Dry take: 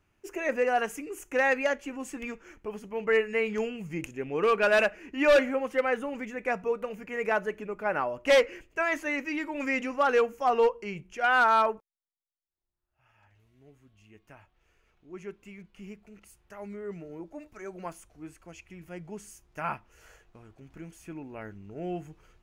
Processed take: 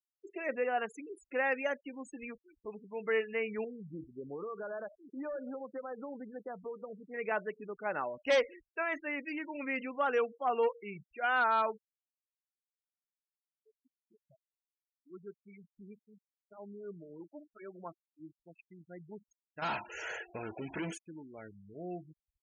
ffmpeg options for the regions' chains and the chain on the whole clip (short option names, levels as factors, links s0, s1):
-filter_complex "[0:a]asettb=1/sr,asplit=3[s0][s1][s2];[s0]atrim=end=3.644[s3];[s1]atrim=start=3.64:end=7.14,asetpts=PTS-STARTPTS,afade=t=in:d=0.004:c=qsin,afade=t=out:st=3.496:d=0.004:c=qsin,lowpass=f=1400:w=0.5412,lowpass=f=1400:w=1.3066,acompressor=threshold=0.0316:ratio=10:attack=3.2:release=140:knee=1:detection=peak[s4];[s2]atrim=start=7.136[s5];[s3][s4]acrossfade=d=0.004:c1=hsin:c2=qsin[s6];[s6][s5]acrossfade=d=0.004:c1=qsin:c2=hsin,asettb=1/sr,asplit=3[s7][s8][s9];[s7]atrim=end=19.624[s10];[s8]atrim=start=19.62:end=20.98,asetpts=PTS-STARTPTS,afade=t=in:d=0.004:c=qsin,afade=t=out:st=1.356:d=0.004:c=qsin,equalizer=f=1200:t=o:w=0.21:g=-12.5,asplit=2[s11][s12];[s12]highpass=f=720:p=1,volume=63.1,asoftclip=type=tanh:threshold=0.0891[s13];[s11][s13]amix=inputs=2:normalize=0,lowpass=f=3500:p=1,volume=0.501[s14];[s9]atrim=start=20.976[s15];[s10][s14]acrossfade=d=0.004:c1=hsin:c2=qsin[s16];[s16][s15]acrossfade=d=0.004:c1=qsin:c2=hsin,afftfilt=real='re*gte(hypot(re,im),0.0178)':imag='im*gte(hypot(re,im),0.0178)':win_size=1024:overlap=0.75,highpass=f=110:p=1,volume=0.473"